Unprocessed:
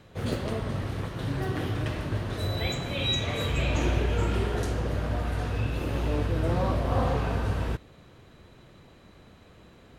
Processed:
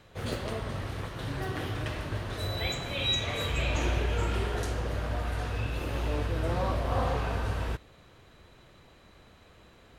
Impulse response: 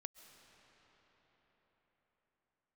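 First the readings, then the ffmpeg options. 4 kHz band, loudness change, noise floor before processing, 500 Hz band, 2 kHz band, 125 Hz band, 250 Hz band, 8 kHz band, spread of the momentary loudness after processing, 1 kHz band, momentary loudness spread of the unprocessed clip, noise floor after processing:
0.0 dB, -2.5 dB, -54 dBFS, -3.0 dB, -0.5 dB, -4.0 dB, -5.5 dB, 0.0 dB, 7 LU, -1.0 dB, 6 LU, -57 dBFS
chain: -af "equalizer=f=190:w=0.5:g=-6.5"

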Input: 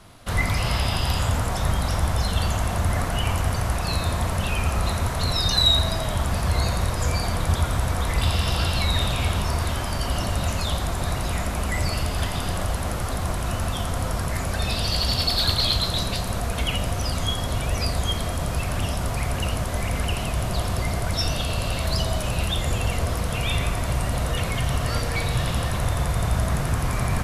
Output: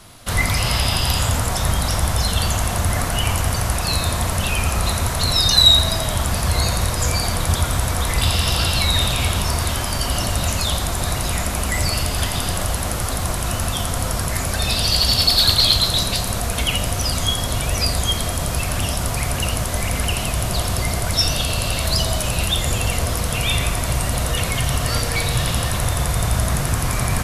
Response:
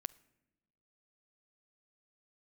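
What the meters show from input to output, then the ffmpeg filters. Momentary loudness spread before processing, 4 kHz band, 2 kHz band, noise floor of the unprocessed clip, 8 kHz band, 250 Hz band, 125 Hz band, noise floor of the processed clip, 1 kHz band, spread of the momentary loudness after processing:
5 LU, +7.5 dB, +5.0 dB, -27 dBFS, +10.0 dB, +2.5 dB, +2.5 dB, -24 dBFS, +3.5 dB, 7 LU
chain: -filter_complex "[0:a]asplit=2[a][b];[1:a]atrim=start_sample=2205,highshelf=f=3.2k:g=10[c];[b][c]afir=irnorm=-1:irlink=0,volume=14.5dB[d];[a][d]amix=inputs=2:normalize=0,volume=-11dB"

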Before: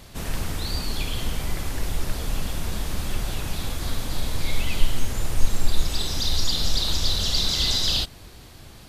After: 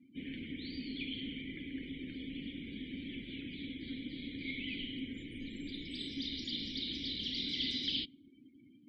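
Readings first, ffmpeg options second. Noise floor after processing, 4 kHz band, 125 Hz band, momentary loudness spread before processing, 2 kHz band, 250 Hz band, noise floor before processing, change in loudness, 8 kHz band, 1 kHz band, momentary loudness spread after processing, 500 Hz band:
-61 dBFS, -12.5 dB, -21.5 dB, 10 LU, -9.5 dB, -4.0 dB, -45 dBFS, -13.0 dB, under -30 dB, under -40 dB, 10 LU, -16.5 dB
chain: -filter_complex "[0:a]acrossover=split=9700[a][b];[b]acompressor=threshold=-53dB:ratio=4:attack=1:release=60[c];[a][c]amix=inputs=2:normalize=0,bandreject=f=620:w=12,acrossover=split=310|1800[d][e][f];[f]aexciter=amount=5.2:drive=6.9:freq=9k[g];[d][e][g]amix=inputs=3:normalize=0,asplit=3[h][i][j];[h]bandpass=f=270:t=q:w=8,volume=0dB[k];[i]bandpass=f=2.29k:t=q:w=8,volume=-6dB[l];[j]bandpass=f=3.01k:t=q:w=8,volume=-9dB[m];[k][l][m]amix=inputs=3:normalize=0,afftdn=nr=31:nf=-55,volume=3dB"

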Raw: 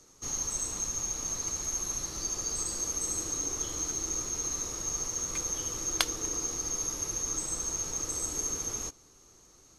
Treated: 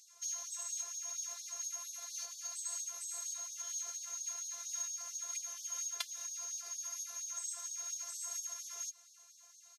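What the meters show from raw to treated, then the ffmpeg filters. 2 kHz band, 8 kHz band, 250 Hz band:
-10.5 dB, -8.5 dB, under -40 dB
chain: -filter_complex "[0:a]asubboost=boost=12:cutoff=120,aecho=1:1:5.5:0.55,acrossover=split=170|470|1500[a][b][c][d];[a]acompressor=threshold=-27dB:ratio=4[e];[b]acompressor=threshold=-55dB:ratio=4[f];[c]acompressor=threshold=-55dB:ratio=4[g];[d]acompressor=threshold=-36dB:ratio=4[h];[e][f][g][h]amix=inputs=4:normalize=0,afftfilt=real='hypot(re,im)*cos(PI*b)':imag='0':win_size=512:overlap=0.75,afftfilt=real='re*gte(b*sr/1024,390*pow(3400/390,0.5+0.5*sin(2*PI*4.3*pts/sr)))':imag='im*gte(b*sr/1024,390*pow(3400/390,0.5+0.5*sin(2*PI*4.3*pts/sr)))':win_size=1024:overlap=0.75,volume=2dB"

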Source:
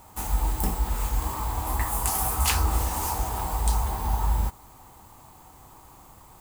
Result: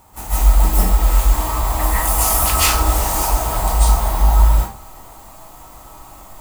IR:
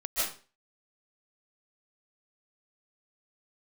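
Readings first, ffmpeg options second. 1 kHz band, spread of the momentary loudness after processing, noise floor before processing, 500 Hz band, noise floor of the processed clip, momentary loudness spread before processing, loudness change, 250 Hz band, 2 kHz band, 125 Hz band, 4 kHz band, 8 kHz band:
+9.0 dB, 5 LU, -51 dBFS, +12.0 dB, -41 dBFS, 6 LU, +10.5 dB, +8.0 dB, +10.0 dB, +10.0 dB, +10.5 dB, +10.5 dB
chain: -filter_complex "[1:a]atrim=start_sample=2205[a];[0:a][a]afir=irnorm=-1:irlink=0,volume=3dB"

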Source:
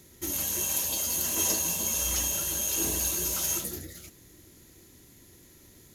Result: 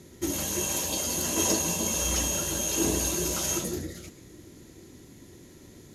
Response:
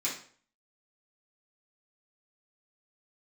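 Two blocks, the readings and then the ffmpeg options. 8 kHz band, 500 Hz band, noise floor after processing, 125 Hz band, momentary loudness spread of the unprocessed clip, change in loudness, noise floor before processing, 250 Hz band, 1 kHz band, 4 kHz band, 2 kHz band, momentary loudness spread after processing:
+0.5 dB, +8.0 dB, -51 dBFS, +6.0 dB, 8 LU, 0.0 dB, -56 dBFS, +8.5 dB, +5.0 dB, +2.0 dB, +2.5 dB, 8 LU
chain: -filter_complex "[0:a]lowpass=9.2k,equalizer=f=280:w=0.33:g=7,asplit=2[a][b];[1:a]atrim=start_sample=2205,adelay=120[c];[b][c]afir=irnorm=-1:irlink=0,volume=-20.5dB[d];[a][d]amix=inputs=2:normalize=0,volume=1.5dB"

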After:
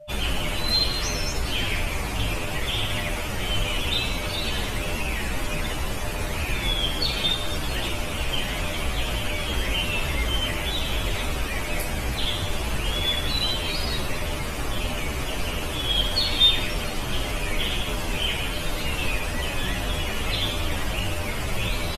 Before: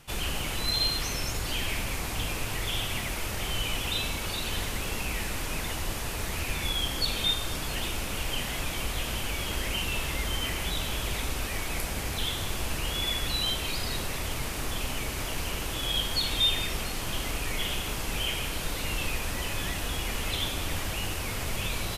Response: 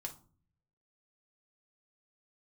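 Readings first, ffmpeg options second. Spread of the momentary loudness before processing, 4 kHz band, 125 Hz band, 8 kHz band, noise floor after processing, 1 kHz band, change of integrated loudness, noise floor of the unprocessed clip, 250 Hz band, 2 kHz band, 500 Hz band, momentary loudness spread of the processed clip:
6 LU, +5.0 dB, +5.5 dB, 0.0 dB, -29 dBFS, +4.5 dB, +4.5 dB, -34 dBFS, +5.5 dB, +4.5 dB, +6.5 dB, 6 LU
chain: -filter_complex "[0:a]aeval=exprs='val(0)+0.00447*sin(2*PI*600*n/s)':c=same,afftdn=nr=20:nf=-42,asplit=2[a][b];[b]adelay=9.8,afreqshift=-1.6[c];[a][c]amix=inputs=2:normalize=1,volume=8.5dB"

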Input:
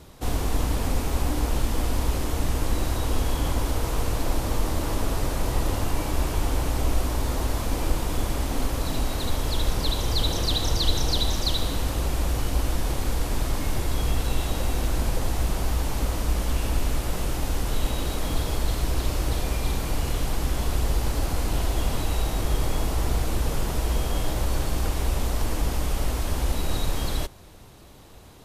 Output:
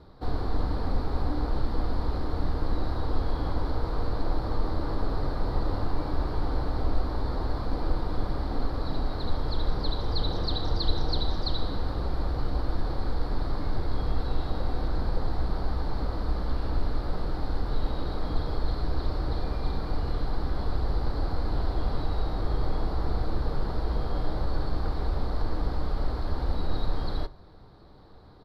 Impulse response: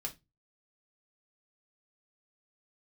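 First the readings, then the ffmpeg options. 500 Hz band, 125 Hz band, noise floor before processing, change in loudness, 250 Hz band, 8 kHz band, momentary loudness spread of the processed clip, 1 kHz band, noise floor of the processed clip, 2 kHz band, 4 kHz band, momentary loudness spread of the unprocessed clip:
-3.0 dB, -4.0 dB, -32 dBFS, -4.5 dB, -3.5 dB, under -25 dB, 2 LU, -3.0 dB, -34 dBFS, -8.5 dB, -8.5 dB, 3 LU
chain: -filter_complex "[0:a]firequalizer=gain_entry='entry(1400,0);entry(2700,-17);entry(4300,0);entry(6300,-27)':delay=0.05:min_phase=1,asplit=2[a][b];[1:a]atrim=start_sample=2205[c];[b][c]afir=irnorm=-1:irlink=0,volume=-7.5dB[d];[a][d]amix=inputs=2:normalize=0,volume=-5.5dB"

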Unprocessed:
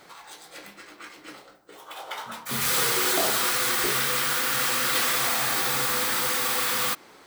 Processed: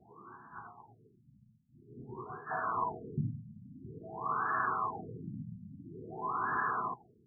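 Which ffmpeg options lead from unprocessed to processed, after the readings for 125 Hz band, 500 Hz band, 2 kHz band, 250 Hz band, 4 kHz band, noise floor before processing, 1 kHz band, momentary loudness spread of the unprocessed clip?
-0.5 dB, -13.0 dB, -13.5 dB, -7.0 dB, under -40 dB, -52 dBFS, -5.0 dB, 13 LU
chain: -af "afftfilt=real='real(if(lt(b,1008),b+24*(1-2*mod(floor(b/24),2)),b),0)':imag='imag(if(lt(b,1008),b+24*(1-2*mod(floor(b/24),2)),b),0)':win_size=2048:overlap=0.75,highpass=110,equalizer=f=120:t=q:w=4:g=7,equalizer=f=290:t=q:w=4:g=-9,equalizer=f=520:t=q:w=4:g=-10,equalizer=f=1.1k:t=q:w=4:g=8,lowpass=f=3.9k:w=0.5412,lowpass=f=3.9k:w=1.3066,afftfilt=real='re*lt(b*sr/1024,240*pow(1800/240,0.5+0.5*sin(2*PI*0.49*pts/sr)))':imag='im*lt(b*sr/1024,240*pow(1800/240,0.5+0.5*sin(2*PI*0.49*pts/sr)))':win_size=1024:overlap=0.75,volume=-3dB"

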